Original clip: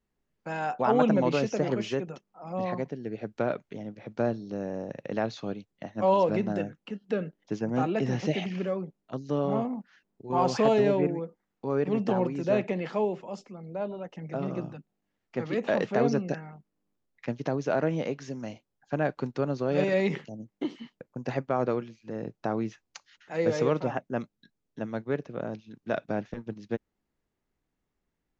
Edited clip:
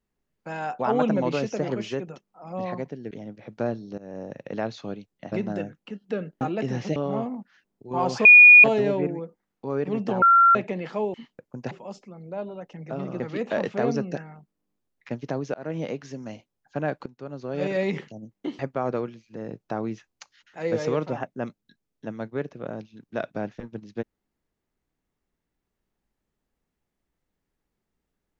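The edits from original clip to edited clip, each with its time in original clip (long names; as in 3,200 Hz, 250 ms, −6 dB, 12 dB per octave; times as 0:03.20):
0:03.11–0:03.70: remove
0:04.57–0:04.90: fade in equal-power, from −20 dB
0:05.91–0:06.32: remove
0:07.41–0:07.79: remove
0:08.34–0:09.35: remove
0:10.64: insert tone 2,450 Hz −6.5 dBFS 0.39 s
0:12.22–0:12.55: beep over 1,370 Hz −12 dBFS
0:14.63–0:15.37: remove
0:17.71–0:17.97: fade in
0:19.23–0:19.97: fade in, from −19.5 dB
0:20.76–0:21.33: move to 0:13.14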